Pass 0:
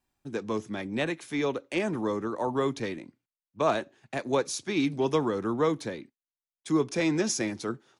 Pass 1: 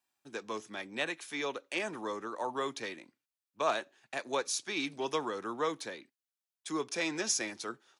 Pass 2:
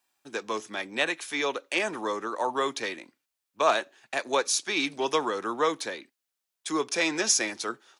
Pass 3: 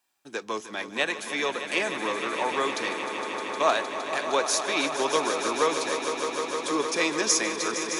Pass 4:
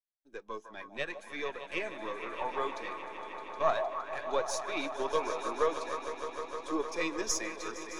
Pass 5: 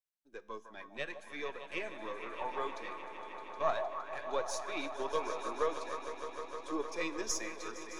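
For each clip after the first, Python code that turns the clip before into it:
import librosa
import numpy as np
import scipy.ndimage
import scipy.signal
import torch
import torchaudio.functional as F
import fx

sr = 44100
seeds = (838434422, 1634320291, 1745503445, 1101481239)

y1 = fx.highpass(x, sr, hz=1100.0, slope=6)
y1 = fx.notch(y1, sr, hz=2100.0, q=23.0)
y2 = fx.peak_eq(y1, sr, hz=120.0, db=-6.5, octaves=2.0)
y2 = y2 * librosa.db_to_amplitude(8.0)
y3 = fx.echo_swell(y2, sr, ms=154, loudest=5, wet_db=-11.0)
y4 = np.where(y3 < 0.0, 10.0 ** (-7.0 / 20.0) * y3, y3)
y4 = fx.echo_stepped(y4, sr, ms=154, hz=760.0, octaves=0.7, feedback_pct=70, wet_db=-5)
y4 = fx.spectral_expand(y4, sr, expansion=1.5)
y4 = y4 * librosa.db_to_amplitude(-6.0)
y5 = fx.comb_fb(y4, sr, f0_hz=74.0, decay_s=0.84, harmonics='all', damping=0.0, mix_pct=40)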